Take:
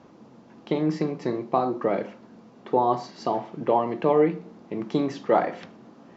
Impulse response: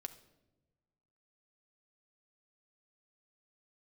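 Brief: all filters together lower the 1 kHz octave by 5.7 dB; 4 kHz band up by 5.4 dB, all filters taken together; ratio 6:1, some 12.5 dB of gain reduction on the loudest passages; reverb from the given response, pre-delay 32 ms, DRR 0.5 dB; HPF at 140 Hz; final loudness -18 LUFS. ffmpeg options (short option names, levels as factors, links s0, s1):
-filter_complex "[0:a]highpass=140,equalizer=f=1000:t=o:g=-8.5,equalizer=f=4000:t=o:g=7,acompressor=threshold=0.0282:ratio=6,asplit=2[s0][s1];[1:a]atrim=start_sample=2205,adelay=32[s2];[s1][s2]afir=irnorm=-1:irlink=0,volume=1.5[s3];[s0][s3]amix=inputs=2:normalize=0,volume=6.31"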